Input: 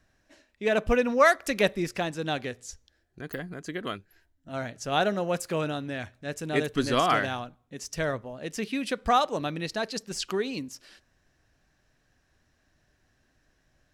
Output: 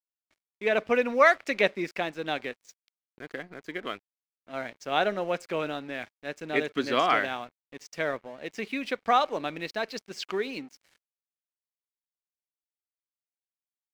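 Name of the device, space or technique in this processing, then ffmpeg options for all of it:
pocket radio on a weak battery: -af "highpass=260,lowpass=4500,aeval=exprs='sgn(val(0))*max(abs(val(0))-0.00266,0)':channel_layout=same,equalizer=frequency=2200:width_type=o:width=0.26:gain=6.5"

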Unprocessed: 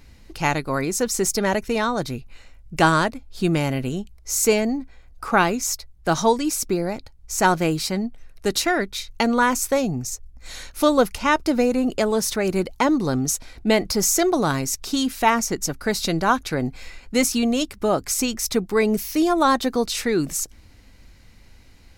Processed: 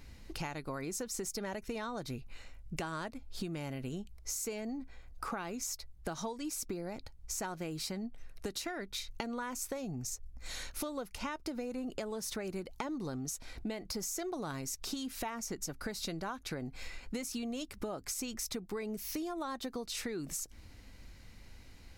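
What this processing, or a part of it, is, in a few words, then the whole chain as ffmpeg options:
serial compression, peaks first: -af "acompressor=threshold=-26dB:ratio=6,acompressor=threshold=-34dB:ratio=2.5,volume=-4dB"

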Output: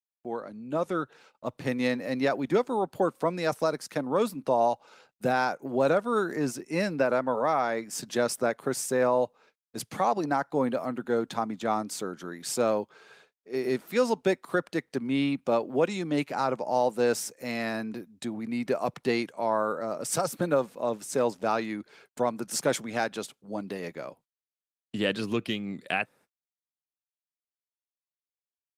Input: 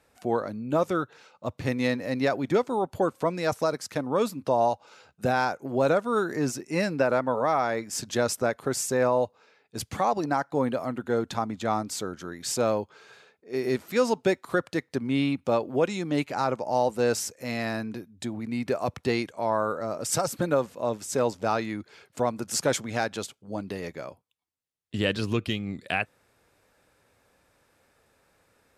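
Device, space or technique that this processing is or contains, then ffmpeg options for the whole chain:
video call: -af "highpass=frequency=140:width=0.5412,highpass=frequency=140:width=1.3066,dynaudnorm=framelen=130:gausssize=13:maxgain=8.5dB,agate=range=-58dB:threshold=-46dB:ratio=16:detection=peak,volume=-8.5dB" -ar 48000 -c:a libopus -b:a 32k

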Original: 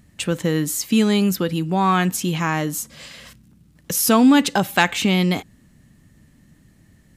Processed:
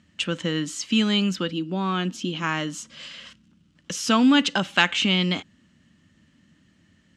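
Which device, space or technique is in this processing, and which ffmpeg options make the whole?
car door speaker: -filter_complex "[0:a]asplit=3[link_01][link_02][link_03];[link_01]afade=type=out:start_time=1.5:duration=0.02[link_04];[link_02]equalizer=frequency=125:width_type=o:width=1:gain=-11,equalizer=frequency=250:width_type=o:width=1:gain=7,equalizer=frequency=1000:width_type=o:width=1:gain=-5,equalizer=frequency=2000:width_type=o:width=1:gain=-8,equalizer=frequency=8000:width_type=o:width=1:gain=-8,afade=type=in:start_time=1.5:duration=0.02,afade=type=out:start_time=2.42:duration=0.02[link_05];[link_03]afade=type=in:start_time=2.42:duration=0.02[link_06];[link_04][link_05][link_06]amix=inputs=3:normalize=0,highpass=100,equalizer=frequency=130:width_type=q:width=4:gain=-10,equalizer=frequency=430:width_type=q:width=4:gain=-6,equalizer=frequency=760:width_type=q:width=4:gain=-6,equalizer=frequency=1400:width_type=q:width=4:gain=4,equalizer=frequency=3000:width_type=q:width=4:gain=9,lowpass=frequency=7000:width=0.5412,lowpass=frequency=7000:width=1.3066,volume=-3.5dB"

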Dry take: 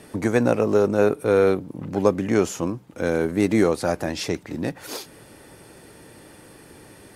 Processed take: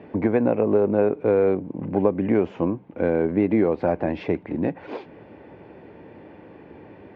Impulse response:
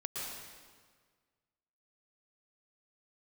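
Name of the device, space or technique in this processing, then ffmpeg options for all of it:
bass amplifier: -af "acompressor=threshold=-19dB:ratio=4,highpass=80,equalizer=frequency=130:width_type=q:width=4:gain=-7,equalizer=frequency=1300:width_type=q:width=4:gain=-10,equalizer=frequency=1800:width_type=q:width=4:gain=-6,lowpass=frequency=2200:width=0.5412,lowpass=frequency=2200:width=1.3066,volume=4dB"

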